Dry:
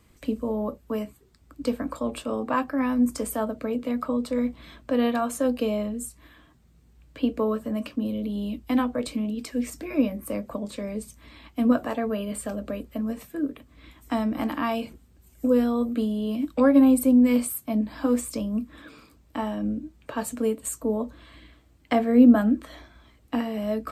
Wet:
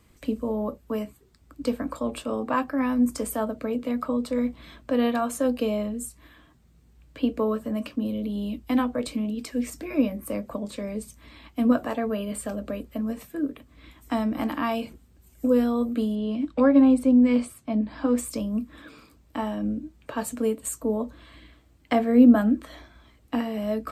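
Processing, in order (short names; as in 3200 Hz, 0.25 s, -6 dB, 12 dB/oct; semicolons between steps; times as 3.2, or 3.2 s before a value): 16.15–18.18 air absorption 92 m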